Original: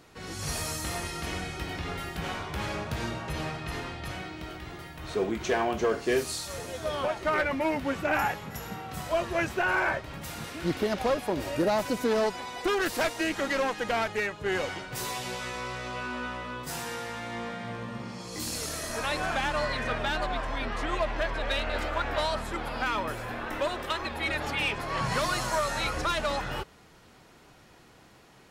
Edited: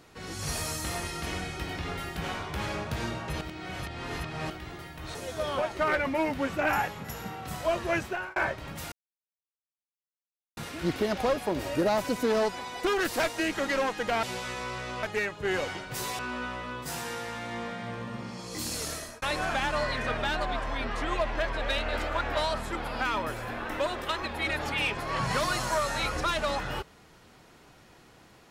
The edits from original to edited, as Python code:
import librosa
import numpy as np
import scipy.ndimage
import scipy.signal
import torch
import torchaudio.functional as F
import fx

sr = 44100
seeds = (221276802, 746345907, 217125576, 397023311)

y = fx.edit(x, sr, fx.reverse_span(start_s=3.41, length_s=1.09),
    fx.cut(start_s=5.15, length_s=1.46),
    fx.fade_out_span(start_s=9.43, length_s=0.39),
    fx.insert_silence(at_s=10.38, length_s=1.65),
    fx.move(start_s=15.2, length_s=0.8, to_s=14.04),
    fx.fade_out_span(start_s=18.72, length_s=0.31), tone=tone)